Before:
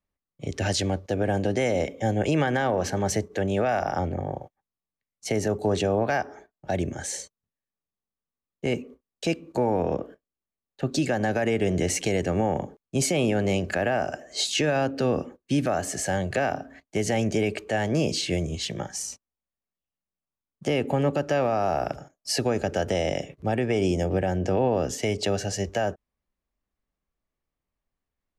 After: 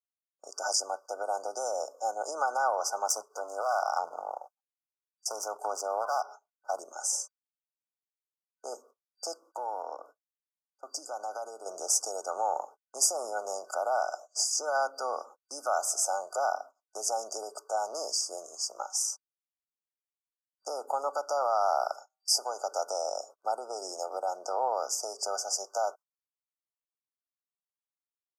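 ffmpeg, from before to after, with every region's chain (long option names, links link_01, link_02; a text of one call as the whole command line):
ffmpeg -i in.wav -filter_complex "[0:a]asettb=1/sr,asplit=3[link_01][link_02][link_03];[link_01]atrim=end=3.064[link_04];[link_02]atrim=start=3.06:end=6.79,asetpts=PTS-STARTPTS,afade=type=in:duration=0.004:curve=qsin,afade=type=out:start_time=3.726:duration=0.004:curve=qsin,lowshelf=frequency=140:width_type=q:width=1.5:gain=13,aeval=exprs='clip(val(0),-1,0.075)':channel_layout=same[link_05];[link_03]atrim=start=6.786[link_06];[link_04][link_05]acrossfade=duration=0.004:curve1=hsin:curve2=qsin[link_07];[link_07][link_06]acrossfade=duration=0.004:curve1=qsin:curve2=hsin,asettb=1/sr,asplit=3[link_08][link_09][link_10];[link_08]atrim=end=9.404[link_11];[link_09]atrim=start=9.4:end=11.66,asetpts=PTS-STARTPTS,afade=type=in:duration=0.004:curve=qsin,afade=type=out:start_time=2.256:duration=0.004:curve=qsin,equalizer=frequency=290:width=5.2:gain=6.5,acompressor=threshold=-37dB:ratio=1.5:attack=3.2:release=140:knee=1:detection=peak[link_12];[link_10]atrim=start=11.656[link_13];[link_11][link_12]acrossfade=duration=0.004:curve1=hsin:curve2=qsin[link_14];[link_14][link_13]acrossfade=duration=0.004:curve1=qsin:curve2=hsin,asettb=1/sr,asplit=3[link_15][link_16][link_17];[link_15]atrim=end=21.984[link_18];[link_16]atrim=start=21.98:end=22.61,asetpts=PTS-STARTPTS,afade=type=in:duration=0.004:curve=qsin,afade=type=out:start_time=0.626:duration=0.004:curve=qsin,lowshelf=frequency=440:gain=-6,bandreject=frequency=1300:width=7.5,bandreject=frequency=128.1:width_type=h:width=4,bandreject=frequency=256.2:width_type=h:width=4,bandreject=frequency=384.3:width_type=h:width=4,bandreject=frequency=512.4:width_type=h:width=4,bandreject=frequency=640.5:width_type=h:width=4,bandreject=frequency=768.6:width_type=h:width=4,bandreject=frequency=896.7:width_type=h:width=4,bandreject=frequency=1024.8:width_type=h:width=4,bandreject=frequency=1152.9:width_type=h:width=4,bandreject=frequency=1281:width_type=h:width=4,bandreject=frequency=1409.1:width_type=h:width=4,bandreject=frequency=1537.2:width_type=h:width=4,bandreject=frequency=1665.3:width_type=h:width=4,bandreject=frequency=1793.4:width_type=h:width=4,bandreject=frequency=1921.5:width_type=h:width=4,bandreject=frequency=2049.6:width_type=h:width=4,bandreject=frequency=2177.7:width_type=h:width=4,bandreject=frequency=2305.8:width_type=h:width=4,bandreject=frequency=2433.9:width_type=h:width=4,bandreject=frequency=2562:width_type=h:width=4,bandreject=frequency=2690.1:width_type=h:width=4,bandreject=frequency=2818.2:width_type=h:width=4,bandreject=frequency=2946.3:width_type=h:width=4,bandreject=frequency=3074.4:width_type=h:width=4,bandreject=frequency=3202.5:width_type=h:width=4,bandreject=frequency=3330.6:width_type=h:width=4[link_19];[link_17]atrim=start=22.606[link_20];[link_18][link_19]acrossfade=duration=0.004:curve1=hsin:curve2=qsin[link_21];[link_21][link_20]acrossfade=duration=0.004:curve1=qsin:curve2=hsin,agate=range=-20dB:threshold=-40dB:ratio=16:detection=peak,afftfilt=real='re*(1-between(b*sr/4096,1500,4700))':imag='im*(1-between(b*sr/4096,1500,4700))':win_size=4096:overlap=0.75,highpass=frequency=750:width=0.5412,highpass=frequency=750:width=1.3066,volume=3dB" out.wav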